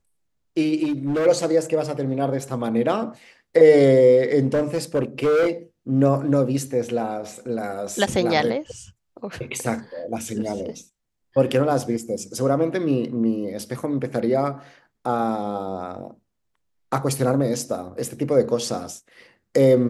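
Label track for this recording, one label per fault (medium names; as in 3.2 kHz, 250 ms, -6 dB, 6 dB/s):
0.830000	1.270000	clipped -19 dBFS
4.460000	5.490000	clipped -15.5 dBFS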